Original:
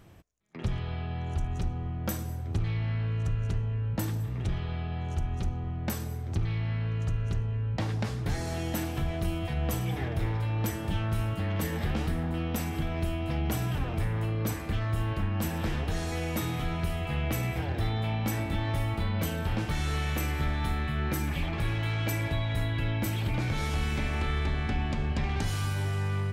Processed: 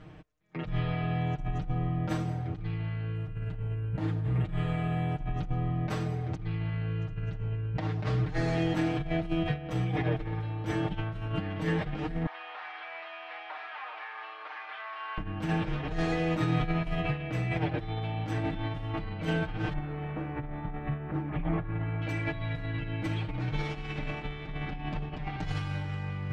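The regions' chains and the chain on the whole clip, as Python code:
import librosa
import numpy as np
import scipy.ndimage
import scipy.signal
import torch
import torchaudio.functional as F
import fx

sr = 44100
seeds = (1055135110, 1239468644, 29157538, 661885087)

y = fx.chain(x, sr, fx.high_shelf(hz=4600.0, db=-3.0),
    fx.resample_bad(factor=4, down='filtered', up='hold'), at=(3.15, 5.18))
y = fx.chain(y, sr, fx.delta_mod(bps=32000, step_db=-48.0),
    fx.highpass(hz=900.0, slope=24),
    fx.air_absorb(metres=240.0), at=(12.26, 15.18))
y = fx.chain(y, sr, fx.lowpass(hz=1400.0, slope=12),
    fx.resample_bad(factor=3, down='filtered', up='hold'), at=(19.73, 22.02))
y = scipy.signal.sosfilt(scipy.signal.butter(2, 3200.0, 'lowpass', fs=sr, output='sos'), y)
y = fx.over_compress(y, sr, threshold_db=-32.0, ratio=-0.5)
y = y + 0.93 * np.pad(y, (int(6.5 * sr / 1000.0), 0))[:len(y)]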